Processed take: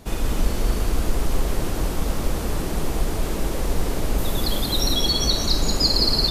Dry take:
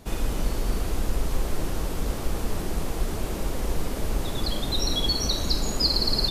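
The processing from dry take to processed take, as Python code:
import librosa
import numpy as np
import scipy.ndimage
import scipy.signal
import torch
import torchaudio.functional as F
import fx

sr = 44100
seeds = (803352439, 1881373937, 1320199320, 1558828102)

y = fx.peak_eq(x, sr, hz=13000.0, db=8.5, octaves=0.64, at=(4.18, 4.93))
y = y + 10.0 ** (-4.5 / 20.0) * np.pad(y, (int(182 * sr / 1000.0), 0))[:len(y)]
y = y * 10.0 ** (3.0 / 20.0)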